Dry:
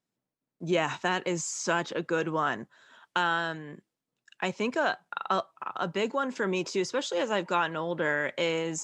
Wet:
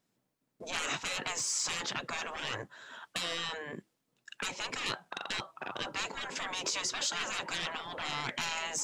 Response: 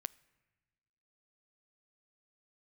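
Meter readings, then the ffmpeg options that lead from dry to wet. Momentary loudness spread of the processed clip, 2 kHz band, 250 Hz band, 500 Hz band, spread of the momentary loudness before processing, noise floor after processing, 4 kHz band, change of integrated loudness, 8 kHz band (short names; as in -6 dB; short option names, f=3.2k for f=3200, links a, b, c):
10 LU, -5.5 dB, -14.5 dB, -14.5 dB, 7 LU, -80 dBFS, +2.5 dB, -5.5 dB, +3.0 dB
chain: -af "aeval=exprs='0.211*(cos(1*acos(clip(val(0)/0.211,-1,1)))-cos(1*PI/2))+0.0299*(cos(5*acos(clip(val(0)/0.211,-1,1)))-cos(5*PI/2))':c=same,afftfilt=real='re*lt(hypot(re,im),0.0708)':imag='im*lt(hypot(re,im),0.0708)':win_size=1024:overlap=0.75,volume=2.5dB"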